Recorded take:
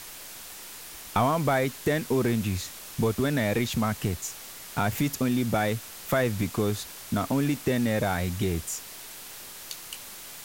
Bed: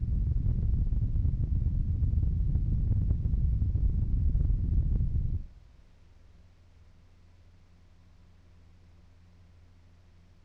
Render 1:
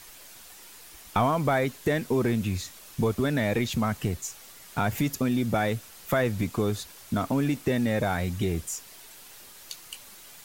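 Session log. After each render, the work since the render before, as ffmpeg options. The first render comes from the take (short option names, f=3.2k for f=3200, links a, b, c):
-af "afftdn=nr=7:nf=-43"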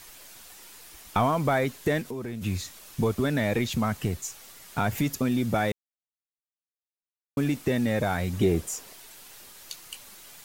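-filter_complex "[0:a]asplit=3[a][b][c];[a]afade=t=out:st=2.01:d=0.02[d];[b]acompressor=threshold=-36dB:ratio=2.5:attack=3.2:release=140:knee=1:detection=peak,afade=t=in:st=2.01:d=0.02,afade=t=out:st=2.41:d=0.02[e];[c]afade=t=in:st=2.41:d=0.02[f];[d][e][f]amix=inputs=3:normalize=0,asettb=1/sr,asplit=3[g][h][i];[g]atrim=end=8.334[j];[h]atrim=start=8.33:end=8.93,asetpts=PTS-STARTPTS,afade=t=in:d=0.004:c=qsin,afade=t=out:st=0.596:d=0.004:c=qsin,equalizer=f=450:t=o:w=2.5:g=7.5[k];[i]atrim=start=8.926[l];[j][k]acrossfade=d=0.004:c1=hsin:c2=qsin[m];[m][l]acrossfade=d=0.004:c1=qsin:c2=hsin,asplit=3[n][o][p];[n]atrim=end=5.72,asetpts=PTS-STARTPTS,afade=t=out:st=5.716:d=0.004:c=hsin[q];[o]atrim=start=5.72:end=7.37,asetpts=PTS-STARTPTS,volume=0[r];[p]atrim=start=7.37,asetpts=PTS-STARTPTS,afade=t=in:d=0.004:c=hsin[s];[q][r][s]concat=n=3:v=0:a=1"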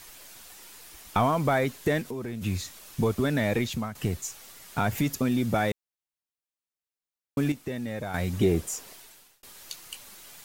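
-filter_complex "[0:a]asplit=5[a][b][c][d][e];[a]atrim=end=3.95,asetpts=PTS-STARTPTS,afade=t=out:st=3.49:d=0.46:c=qsin:silence=0.199526[f];[b]atrim=start=3.95:end=7.522,asetpts=PTS-STARTPTS,afade=t=in:d=0.004:c=hsin:silence=0.199526[g];[c]atrim=start=7.518:end=8.142,asetpts=PTS-STARTPTS,volume=-8dB[h];[d]atrim=start=8.138:end=9.43,asetpts=PTS-STARTPTS,afade=t=out:st=0.792:d=0.5[i];[e]atrim=start=9.43,asetpts=PTS-STARTPTS,afade=t=in:d=0.004:c=hsin[j];[f][g]concat=n=2:v=0:a=1[k];[k][h]acrossfade=d=0.004:c1=hsin:c2=hsin[l];[i][j]concat=n=2:v=0:a=1[m];[l][m]acrossfade=d=0.004:c1=hsin:c2=hsin"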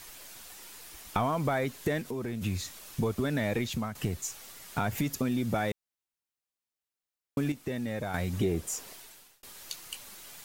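-af "acompressor=threshold=-29dB:ratio=2"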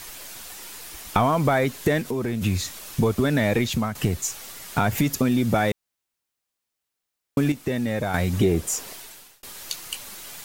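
-af "volume=8.5dB"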